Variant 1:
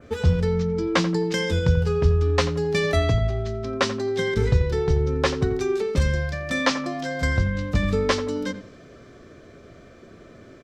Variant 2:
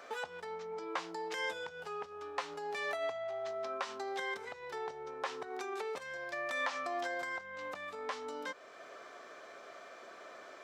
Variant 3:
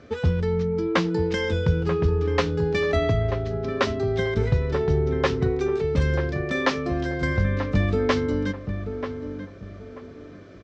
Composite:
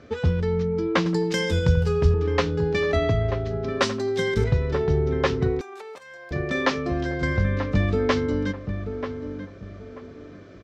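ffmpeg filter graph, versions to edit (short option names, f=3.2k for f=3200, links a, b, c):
-filter_complex "[0:a]asplit=2[a][b];[2:a]asplit=4[c][d][e][f];[c]atrim=end=1.062[g];[a]atrim=start=1.058:end=2.142[h];[d]atrim=start=2.138:end=3.812[i];[b]atrim=start=3.808:end=4.442[j];[e]atrim=start=4.438:end=5.612[k];[1:a]atrim=start=5.608:end=6.312[l];[f]atrim=start=6.308[m];[g][h]acrossfade=d=0.004:c1=hsin:c2=hsin[n];[n][i]acrossfade=d=0.004:c1=hsin:c2=hsin[o];[o][j]acrossfade=d=0.004:c1=hsin:c2=hsin[p];[p][k]acrossfade=d=0.004:c1=hsin:c2=hsin[q];[q][l]acrossfade=d=0.004:c1=hsin:c2=hsin[r];[r][m]acrossfade=d=0.004:c1=hsin:c2=hsin"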